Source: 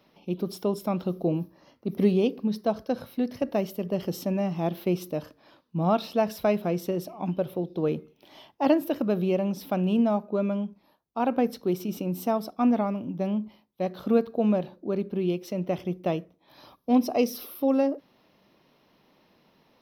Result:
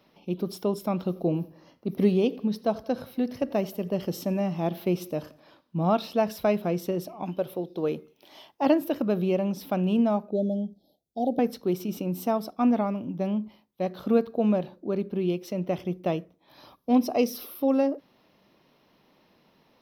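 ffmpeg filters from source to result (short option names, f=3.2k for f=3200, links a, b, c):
-filter_complex "[0:a]asettb=1/sr,asplit=3[a][b][c];[a]atrim=end=0.904[d];[b]atrim=start=0.9:end=5.9,asetpts=PTS-STARTPTS,afade=t=in:d=0.004:c=qsin,afade=t=out:st=4.996:d=0.004:c=qsin,aecho=1:1:87|174|261|348:0.0794|0.0413|0.0215|0.0112,atrim=end_sample=220500[e];[c]atrim=start=5.896[f];[d][e]acrossfade=d=0.004:c1=hsin:c2=qsin[g];[g][f]acrossfade=d=0.004:c1=qsin:c2=hsin,asettb=1/sr,asplit=3[h][i][j];[h]atrim=end=7.234[k];[i]atrim=start=7.23:end=8.62,asetpts=PTS-STARTPTS,afade=t=in:d=0.004:c=qsin,afade=t=out:st=1.386:d=0.004:c=qsin,bass=f=250:g=-7,treble=f=4k:g=4[l];[j]atrim=start=8.616[m];[k][l]acrossfade=d=0.004:c1=hsin:c2=qsin[n];[n][m]acrossfade=d=0.004:c1=qsin:c2=hsin,asettb=1/sr,asplit=3[o][p][q];[o]atrim=end=10.314[r];[p]atrim=start=10.31:end=11.39,asetpts=PTS-STARTPTS,afade=t=in:d=0.004:c=qsin,afade=t=out:st=1.076:d=0.004:c=qsin,asuperstop=centerf=1600:order=20:qfactor=0.65[s];[q]atrim=start=11.386[t];[r][s]acrossfade=d=0.004:c1=hsin:c2=qsin[u];[u][t]acrossfade=d=0.004:c1=qsin:c2=hsin"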